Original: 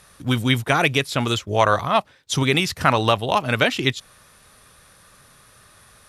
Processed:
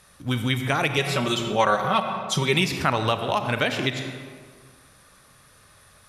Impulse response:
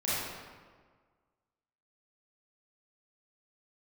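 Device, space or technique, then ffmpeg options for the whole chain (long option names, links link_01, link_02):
ducked reverb: -filter_complex "[0:a]asplit=3[link_01][link_02][link_03];[1:a]atrim=start_sample=2205[link_04];[link_02][link_04]afir=irnorm=-1:irlink=0[link_05];[link_03]apad=whole_len=268210[link_06];[link_05][link_06]sidechaincompress=threshold=-22dB:ratio=8:attack=22:release=192,volume=-10dB[link_07];[link_01][link_07]amix=inputs=2:normalize=0,asettb=1/sr,asplit=3[link_08][link_09][link_10];[link_08]atrim=end=0.974[link_11];[link_09]atrim=start=0.97:end=2.65,asetpts=PTS-STARTPTS,afade=type=in:duration=0.004:curve=qsin,afade=type=out:start_time=1.676:duration=0.004:curve=qsin,aecho=1:1:5.3:0.89,atrim=end_sample=74088[link_12];[link_10]atrim=start=2.646[link_13];[link_11][link_12]acrossfade=duration=0.004:curve1=hsin:curve2=qsin[link_14];[link_14][link_13]acrossfade=duration=0.004:curve1=qsin:curve2=hsin,volume=-6dB"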